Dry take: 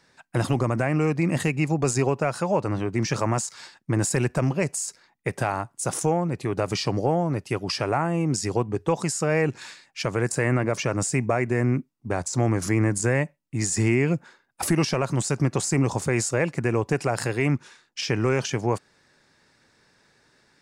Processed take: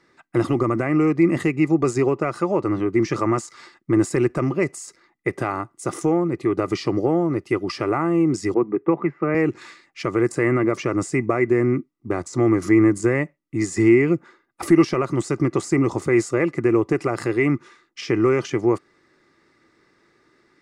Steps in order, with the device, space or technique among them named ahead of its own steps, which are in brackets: 8.54–9.35 Chebyshev band-pass 140–2400 Hz, order 4; inside a helmet (high shelf 5900 Hz -7.5 dB; small resonant body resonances 340/1200/2000 Hz, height 14 dB, ringing for 35 ms); gain -2.5 dB

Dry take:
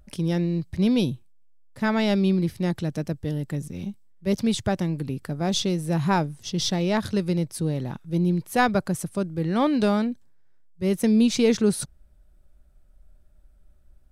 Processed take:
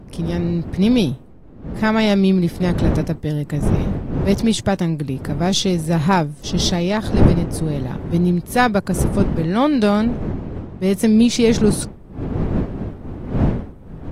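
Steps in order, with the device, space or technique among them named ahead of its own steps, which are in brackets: smartphone video outdoors (wind noise 230 Hz -28 dBFS; AGC gain up to 6.5 dB; AAC 48 kbps 44100 Hz)

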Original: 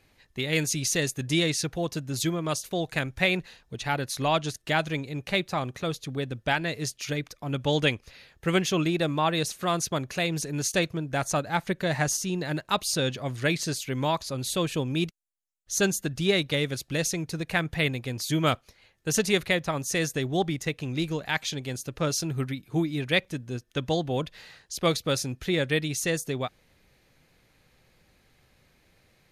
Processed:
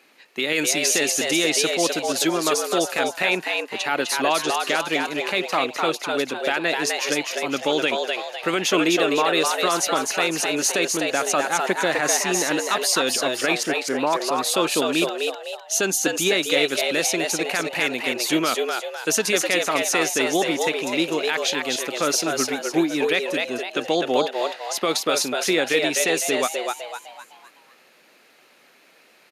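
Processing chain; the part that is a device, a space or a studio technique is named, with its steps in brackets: laptop speaker (HPF 250 Hz 24 dB/oct; bell 1300 Hz +4.5 dB 0.45 oct; bell 2600 Hz +4 dB 0.33 oct; limiter -18 dBFS, peak gain reduction 11 dB); 13.63–14.13 LPF 1800 Hz 24 dB/oct; frequency-shifting echo 0.254 s, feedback 42%, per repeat +110 Hz, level -3.5 dB; gain +7.5 dB

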